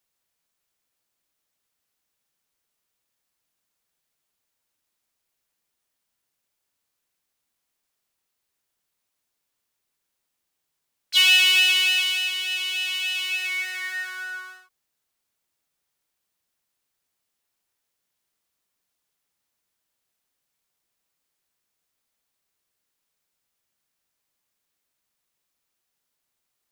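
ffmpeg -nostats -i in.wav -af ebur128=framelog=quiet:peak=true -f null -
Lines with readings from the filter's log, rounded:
Integrated loudness:
  I:         -19.3 LUFS
  Threshold: -30.1 LUFS
Loudness range:
  LRA:        15.9 LU
  Threshold: -42.4 LUFS
  LRA low:   -35.0 LUFS
  LRA high:  -19.1 LUFS
True peak:
  Peak:       -5.3 dBFS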